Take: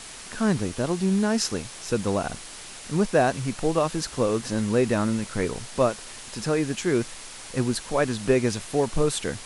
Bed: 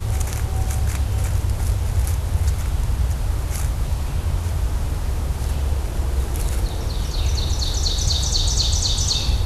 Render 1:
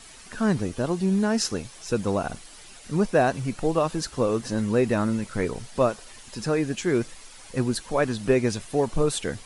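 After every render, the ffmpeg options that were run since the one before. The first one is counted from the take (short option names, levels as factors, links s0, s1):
-af "afftdn=nr=9:nf=-41"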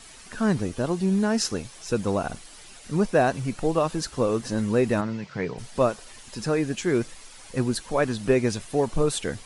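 -filter_complex "[0:a]asplit=3[s0][s1][s2];[s0]afade=t=out:st=5:d=0.02[s3];[s1]highpass=130,equalizer=f=150:t=q:w=4:g=7,equalizer=f=230:t=q:w=4:g=-6,equalizer=f=340:t=q:w=4:g=-5,equalizer=f=540:t=q:w=4:g=-4,equalizer=f=1300:t=q:w=4:g=-5,equalizer=f=3700:t=q:w=4:g=-4,lowpass=f=5200:w=0.5412,lowpass=f=5200:w=1.3066,afade=t=in:st=5:d=0.02,afade=t=out:st=5.57:d=0.02[s4];[s2]afade=t=in:st=5.57:d=0.02[s5];[s3][s4][s5]amix=inputs=3:normalize=0"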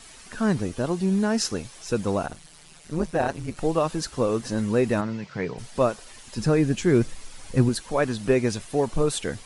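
-filter_complex "[0:a]asettb=1/sr,asplit=3[s0][s1][s2];[s0]atrim=end=2.264[s3];[s1]atrim=start=2.26:end=3.57,asetpts=PTS-STARTPTS,afade=t=in:d=0.004:c=qsin,afade=t=out:st=1.306:d=0.004:c=qsin,tremolo=f=160:d=0.857[s4];[s2]atrim=start=3.566[s5];[s3][s4]acrossfade=d=0.004:c1=hsin:c2=qsin[s6];[s6][s5]acrossfade=d=0.004:c1=qsin:c2=hsin,asettb=1/sr,asplit=3[s7][s8][s9];[s7]atrim=end=6.374[s10];[s8]atrim=start=6.37:end=7.69,asetpts=PTS-STARTPTS,afade=t=in:d=0.004:c=qsin,afade=t=out:st=1.316:d=0.004:c=qsin,lowshelf=f=250:g=10[s11];[s9]atrim=start=7.686[s12];[s10][s11]acrossfade=d=0.004:c1=hsin:c2=qsin[s13];[s13][s12]acrossfade=d=0.004:c1=qsin:c2=hsin"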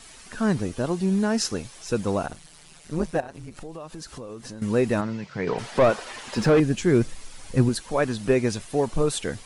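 -filter_complex "[0:a]asettb=1/sr,asplit=3[s0][s1][s2];[s0]atrim=end=3.204[s3];[s1]atrim=start=3.2:end=4.62,asetpts=PTS-STARTPTS,afade=t=in:d=0.004:c=qsin,afade=t=out:st=1.416:d=0.004:c=qsin,acompressor=threshold=0.0178:ratio=6:attack=3.2:release=140:knee=1:detection=peak[s4];[s2]atrim=start=4.616[s5];[s3][s4]acrossfade=d=0.004:c1=hsin:c2=qsin[s6];[s6][s5]acrossfade=d=0.004:c1=qsin:c2=hsin,asettb=1/sr,asplit=3[s7][s8][s9];[s7]atrim=end=5.474[s10];[s8]atrim=start=5.47:end=6.6,asetpts=PTS-STARTPTS,afade=t=in:d=0.004:c=qsin,afade=t=out:st=1.126:d=0.004:c=qsin,asplit=2[s11][s12];[s12]highpass=f=720:p=1,volume=14.1,asoftclip=type=tanh:threshold=0.355[s13];[s11][s13]amix=inputs=2:normalize=0,lowpass=f=1300:p=1,volume=0.501[s14];[s9]atrim=start=6.596[s15];[s10][s14]acrossfade=d=0.004:c1=hsin:c2=qsin[s16];[s16][s15]acrossfade=d=0.004:c1=qsin:c2=hsin"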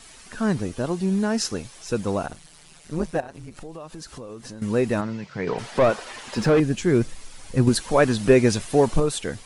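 -filter_complex "[0:a]asettb=1/sr,asplit=3[s0][s1][s2];[s0]atrim=end=7.674[s3];[s1]atrim=start=7.67:end=9,asetpts=PTS-STARTPTS,afade=t=in:d=0.004:c=qsin,afade=t=out:st=1.326:d=0.004:c=qsin,acontrast=49[s4];[s2]atrim=start=8.996[s5];[s3][s4]acrossfade=d=0.004:c1=hsin:c2=qsin[s6];[s6][s5]acrossfade=d=0.004:c1=qsin:c2=hsin"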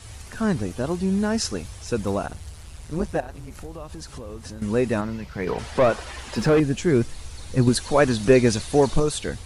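-filter_complex "[1:a]volume=0.106[s0];[0:a][s0]amix=inputs=2:normalize=0"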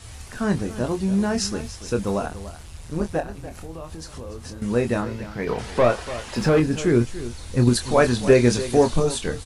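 -filter_complex "[0:a]asplit=2[s0][s1];[s1]adelay=25,volume=0.422[s2];[s0][s2]amix=inputs=2:normalize=0,aecho=1:1:290:0.188"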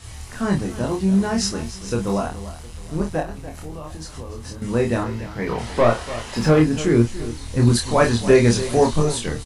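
-filter_complex "[0:a]asplit=2[s0][s1];[s1]adelay=26,volume=0.794[s2];[s0][s2]amix=inputs=2:normalize=0,aecho=1:1:713:0.0708"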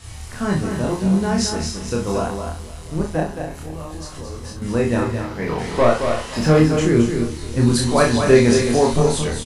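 -filter_complex "[0:a]asplit=2[s0][s1];[s1]adelay=38,volume=0.531[s2];[s0][s2]amix=inputs=2:normalize=0,aecho=1:1:220:0.473"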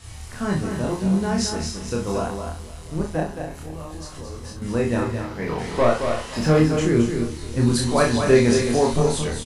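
-af "volume=0.708"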